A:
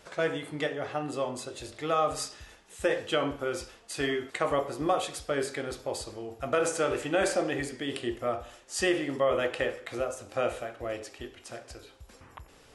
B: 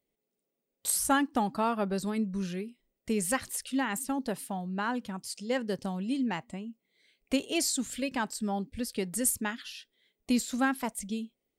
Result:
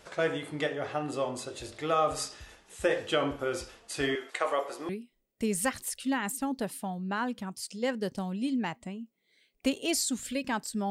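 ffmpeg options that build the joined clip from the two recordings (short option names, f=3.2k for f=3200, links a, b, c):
-filter_complex "[0:a]asettb=1/sr,asplit=3[a][b][c];[a]atrim=end=4.154[d];[b]atrim=start=4.15:end=4.89,asetpts=PTS-STARTPTS,afade=t=in:d=0.004:c=qsin,afade=t=out:st=0.736:d=0.004:c=qsin,highpass=490[e];[c]atrim=start=4.886[f];[d][e]acrossfade=d=0.004:c1=hsin:c2=qsin[g];[g][f]acrossfade=d=0.004:c1=qsin:c2=hsin,apad=whole_dur=10.9,atrim=end=10.9,atrim=end=4.892[h];[1:a]atrim=start=2.558:end=8.57[i];[h][i]acrossfade=d=0.004:c1=hsin:c2=hsin"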